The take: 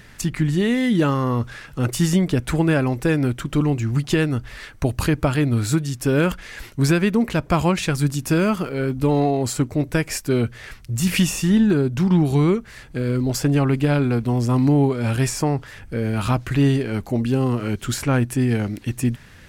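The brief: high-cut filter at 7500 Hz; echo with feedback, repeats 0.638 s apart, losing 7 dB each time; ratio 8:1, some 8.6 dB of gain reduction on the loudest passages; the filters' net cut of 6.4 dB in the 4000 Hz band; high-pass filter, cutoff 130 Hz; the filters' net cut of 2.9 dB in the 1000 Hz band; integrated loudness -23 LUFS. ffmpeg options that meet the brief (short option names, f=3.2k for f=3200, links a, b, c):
-af "highpass=130,lowpass=7.5k,equalizer=f=1k:t=o:g=-3.5,equalizer=f=4k:t=o:g=-8.5,acompressor=threshold=-23dB:ratio=8,aecho=1:1:638|1276|1914|2552|3190:0.447|0.201|0.0905|0.0407|0.0183,volume=4.5dB"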